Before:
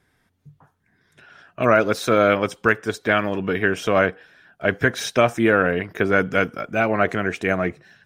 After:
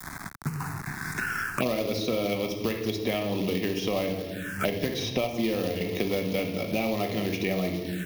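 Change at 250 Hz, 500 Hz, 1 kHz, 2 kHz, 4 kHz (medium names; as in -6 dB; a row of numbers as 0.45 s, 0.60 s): -4.5 dB, -8.0 dB, -12.0 dB, -11.5 dB, -1.0 dB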